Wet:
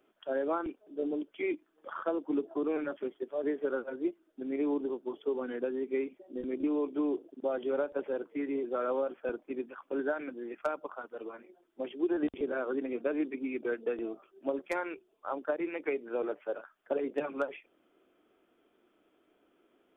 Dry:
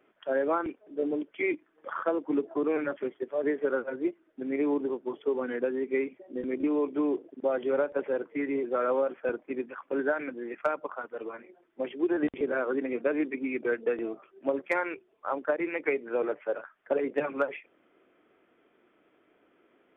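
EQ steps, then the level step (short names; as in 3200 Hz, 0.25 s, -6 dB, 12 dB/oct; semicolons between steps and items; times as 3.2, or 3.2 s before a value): ten-band EQ 125 Hz -12 dB, 250 Hz -3 dB, 500 Hz -6 dB, 1000 Hz -5 dB, 2000 Hz -12 dB; +3.5 dB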